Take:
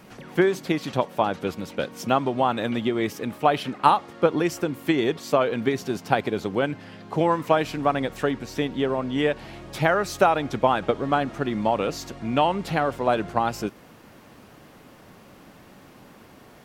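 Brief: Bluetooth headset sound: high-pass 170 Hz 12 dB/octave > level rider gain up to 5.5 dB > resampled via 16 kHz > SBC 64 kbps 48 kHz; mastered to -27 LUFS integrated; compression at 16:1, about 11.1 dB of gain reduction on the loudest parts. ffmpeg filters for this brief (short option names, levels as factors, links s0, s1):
-af "acompressor=threshold=0.0631:ratio=16,highpass=170,dynaudnorm=m=1.88,aresample=16000,aresample=44100,volume=1.5" -ar 48000 -c:a sbc -b:a 64k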